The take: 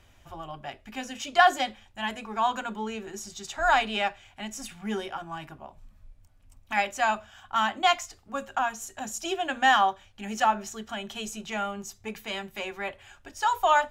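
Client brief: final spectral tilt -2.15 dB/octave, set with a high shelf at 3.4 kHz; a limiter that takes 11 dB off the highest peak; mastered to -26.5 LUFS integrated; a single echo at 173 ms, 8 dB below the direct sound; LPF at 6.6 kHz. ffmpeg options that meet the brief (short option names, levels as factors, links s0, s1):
-af "lowpass=6600,highshelf=f=3400:g=5.5,alimiter=limit=0.126:level=0:latency=1,aecho=1:1:173:0.398,volume=1.68"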